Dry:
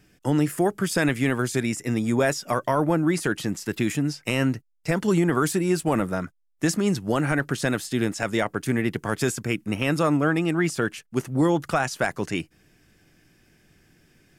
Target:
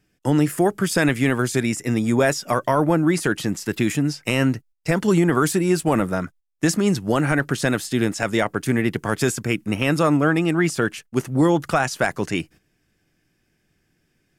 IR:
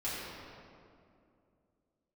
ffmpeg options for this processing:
-af "agate=range=-12dB:threshold=-47dB:ratio=16:detection=peak,volume=3.5dB"

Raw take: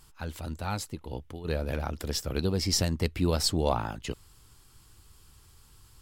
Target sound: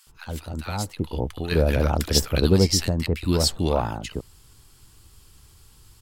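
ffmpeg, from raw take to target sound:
ffmpeg -i in.wav -filter_complex "[0:a]asplit=3[link_01][link_02][link_03];[link_01]afade=type=out:start_time=0.9:duration=0.02[link_04];[link_02]acontrast=65,afade=type=in:start_time=0.9:duration=0.02,afade=type=out:start_time=2.58:duration=0.02[link_05];[link_03]afade=type=in:start_time=2.58:duration=0.02[link_06];[link_04][link_05][link_06]amix=inputs=3:normalize=0,acrossover=split=1200[link_07][link_08];[link_07]adelay=70[link_09];[link_09][link_08]amix=inputs=2:normalize=0,volume=4.5dB" out.wav

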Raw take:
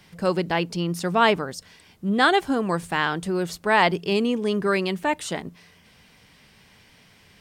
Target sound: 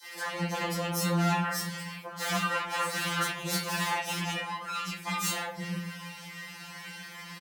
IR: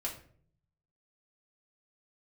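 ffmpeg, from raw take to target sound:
-filter_complex "[0:a]flanger=delay=8.3:depth=2.4:regen=59:speed=0.29:shape=triangular,acompressor=threshold=-40dB:ratio=6,asettb=1/sr,asplit=3[link_01][link_02][link_03];[link_01]atrim=end=2.124[link_04];[link_02]atrim=start=2.12:end=4.41,asetpts=PTS-STARTPTS,afade=type=in:duration=0.004:curve=qsin,afade=type=out:start_time=2.286:duration=0.004:curve=qsin,equalizer=frequency=1800:width=0.56:gain=10.5[link_05];[link_03]atrim=start=4.406[link_06];[link_04][link_05]acrossfade=duration=0.004:curve1=hsin:curve2=qsin[link_07];[link_07][link_06]acrossfade=duration=0.004:curve1=qsin:curve2=hsin,asoftclip=type=hard:threshold=-38dB,aeval=exprs='0.0841*(cos(1*acos(clip(val(0)/0.0841,-1,1)))-cos(1*PI/2))+0.0299*(cos(8*acos(clip(val(0)/0.0841,-1,1)))-cos(8*PI/2))':channel_layout=same[link_08];[1:a]atrim=start_sample=2205,asetrate=40131,aresample=44100[link_09];[link_08][link_09]afir=irnorm=-1:irlink=0,aeval=exprs='0.224*sin(PI/2*5.01*val(0)/0.224)':channel_layout=same,highpass=180,equalizer=frequency=380:width=1.8:gain=-9.5,acrossover=split=400|4400[link_10][link_11][link_12];[link_11]adelay=30[link_13];[link_10]adelay=280[link_14];[link_14][link_13][link_12]amix=inputs=3:normalize=0,afftfilt=real='re*2.83*eq(mod(b,8),0)':imag='im*2.83*eq(mod(b,8),0)':win_size=2048:overlap=0.75"

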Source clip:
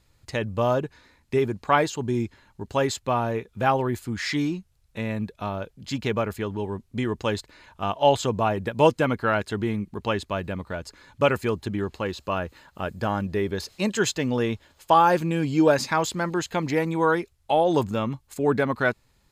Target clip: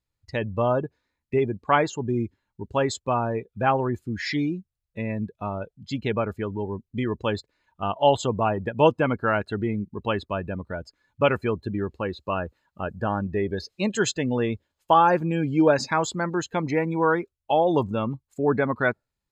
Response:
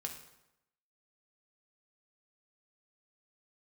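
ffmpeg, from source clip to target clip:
-af "afftdn=noise_reduction=21:noise_floor=-35"

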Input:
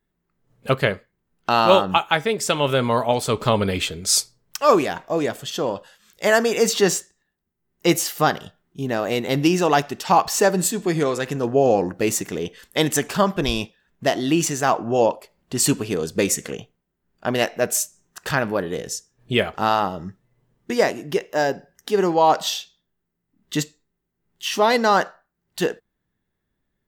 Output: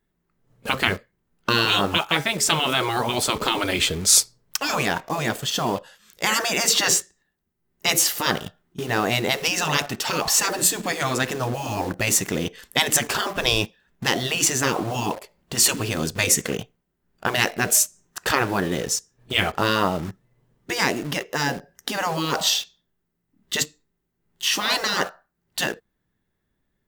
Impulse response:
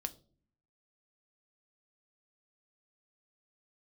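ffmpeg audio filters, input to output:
-filter_complex "[0:a]asplit=2[link_01][link_02];[link_02]acrusher=bits=5:mix=0:aa=0.000001,volume=-5dB[link_03];[link_01][link_03]amix=inputs=2:normalize=0,afftfilt=real='re*lt(hypot(re,im),0.501)':imag='im*lt(hypot(re,im),0.501)':win_size=1024:overlap=0.75,volume=1.5dB"

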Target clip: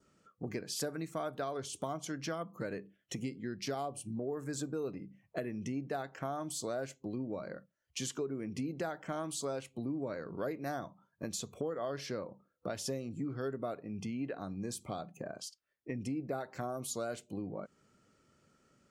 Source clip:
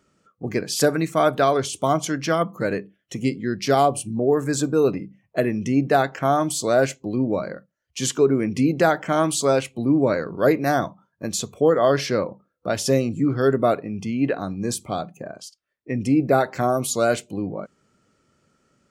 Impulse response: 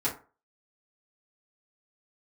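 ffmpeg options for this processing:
-af "adynamicequalizer=threshold=0.00794:dfrequency=2300:dqfactor=2:tfrequency=2300:tqfactor=2:attack=5:release=100:ratio=0.375:range=2:mode=cutabove:tftype=bell,acompressor=threshold=-33dB:ratio=4,volume=-4.5dB"

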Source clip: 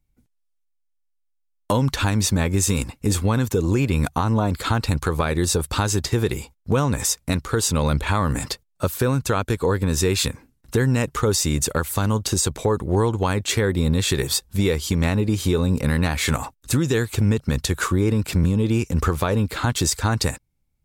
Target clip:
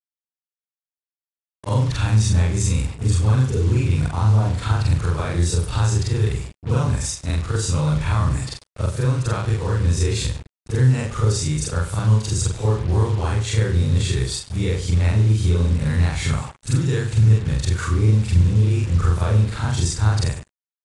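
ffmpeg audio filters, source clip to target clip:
ffmpeg -i in.wav -filter_complex "[0:a]afftfilt=real='re':imag='-im':win_size=4096:overlap=0.75,lowshelf=frequency=160:width_type=q:width=1.5:gain=8,asplit=2[link_01][link_02];[link_02]adelay=98,lowpass=frequency=4000:poles=1,volume=-12dB,asplit=2[link_03][link_04];[link_04]adelay=98,lowpass=frequency=4000:poles=1,volume=0.18[link_05];[link_03][link_05]amix=inputs=2:normalize=0[link_06];[link_01][link_06]amix=inputs=2:normalize=0,acrusher=bits=5:mix=0:aa=0.5,aresample=22050,aresample=44100" out.wav

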